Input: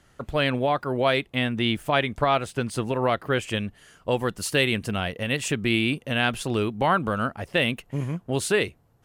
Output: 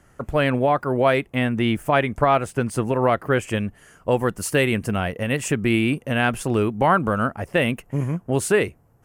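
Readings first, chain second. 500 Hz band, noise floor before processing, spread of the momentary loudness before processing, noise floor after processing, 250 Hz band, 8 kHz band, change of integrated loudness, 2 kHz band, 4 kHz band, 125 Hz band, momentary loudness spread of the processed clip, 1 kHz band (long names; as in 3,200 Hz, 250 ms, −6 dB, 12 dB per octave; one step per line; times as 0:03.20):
+4.5 dB, −60 dBFS, 7 LU, −56 dBFS, +4.5 dB, +2.5 dB, +3.5 dB, +1.5 dB, −4.5 dB, +4.5 dB, 6 LU, +4.0 dB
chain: parametric band 3,800 Hz −12.5 dB 0.89 octaves
level +4.5 dB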